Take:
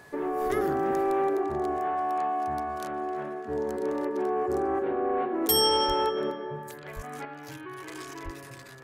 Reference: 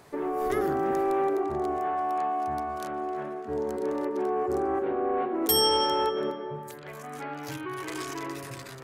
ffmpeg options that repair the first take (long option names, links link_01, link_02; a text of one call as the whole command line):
ffmpeg -i in.wav -filter_complex "[0:a]bandreject=frequency=1700:width=30,asplit=3[link_01][link_02][link_03];[link_01]afade=type=out:start_time=5.87:duration=0.02[link_04];[link_02]highpass=frequency=140:width=0.5412,highpass=frequency=140:width=1.3066,afade=type=in:start_time=5.87:duration=0.02,afade=type=out:start_time=5.99:duration=0.02[link_05];[link_03]afade=type=in:start_time=5.99:duration=0.02[link_06];[link_04][link_05][link_06]amix=inputs=3:normalize=0,asplit=3[link_07][link_08][link_09];[link_07]afade=type=out:start_time=6.95:duration=0.02[link_10];[link_08]highpass=frequency=140:width=0.5412,highpass=frequency=140:width=1.3066,afade=type=in:start_time=6.95:duration=0.02,afade=type=out:start_time=7.07:duration=0.02[link_11];[link_09]afade=type=in:start_time=7.07:duration=0.02[link_12];[link_10][link_11][link_12]amix=inputs=3:normalize=0,asplit=3[link_13][link_14][link_15];[link_13]afade=type=out:start_time=8.24:duration=0.02[link_16];[link_14]highpass=frequency=140:width=0.5412,highpass=frequency=140:width=1.3066,afade=type=in:start_time=8.24:duration=0.02,afade=type=out:start_time=8.36:duration=0.02[link_17];[link_15]afade=type=in:start_time=8.36:duration=0.02[link_18];[link_16][link_17][link_18]amix=inputs=3:normalize=0,asetnsamples=nb_out_samples=441:pad=0,asendcmd='7.25 volume volume 5.5dB',volume=0dB" out.wav